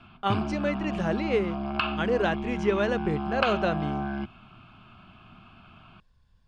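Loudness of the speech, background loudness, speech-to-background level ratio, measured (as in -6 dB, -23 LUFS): -29.0 LUFS, -31.5 LUFS, 2.5 dB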